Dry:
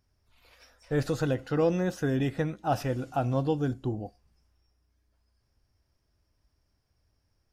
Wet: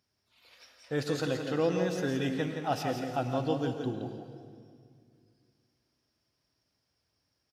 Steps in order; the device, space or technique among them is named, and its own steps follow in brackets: PA in a hall (HPF 150 Hz 12 dB/oct; bell 3900 Hz +7 dB 1.5 oct; echo 0.17 s -7 dB; reverb RT60 2.1 s, pre-delay 97 ms, DRR 8.5 dB); gain -3.5 dB

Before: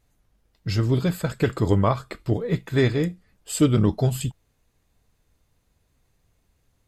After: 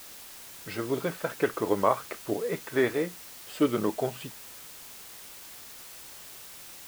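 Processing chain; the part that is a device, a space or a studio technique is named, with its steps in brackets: wax cylinder (BPF 390–2300 Hz; wow and flutter; white noise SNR 14 dB)

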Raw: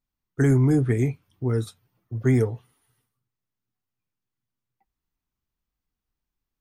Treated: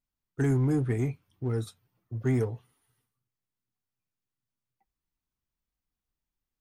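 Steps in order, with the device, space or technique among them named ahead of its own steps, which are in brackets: parallel distortion (in parallel at -5.5 dB: hard clip -25 dBFS, distortion -6 dB); on the sum: gain -8 dB

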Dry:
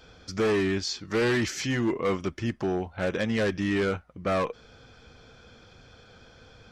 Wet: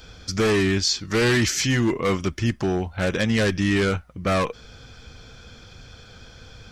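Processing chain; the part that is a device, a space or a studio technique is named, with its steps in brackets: smiley-face EQ (low shelf 99 Hz +6.5 dB; bell 550 Hz -4 dB 2.5 oct; high shelf 5200 Hz +7.5 dB); gain +6.5 dB

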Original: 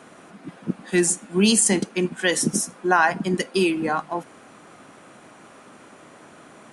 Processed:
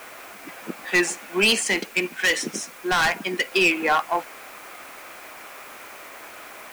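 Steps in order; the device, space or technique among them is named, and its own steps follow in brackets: drive-through speaker (BPF 540–3900 Hz; bell 2300 Hz +8 dB 0.57 oct; hard clip -19.5 dBFS, distortion -7 dB; white noise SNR 23 dB); 1.62–3.52 bell 840 Hz -5 dB 2.3 oct; gain +6 dB

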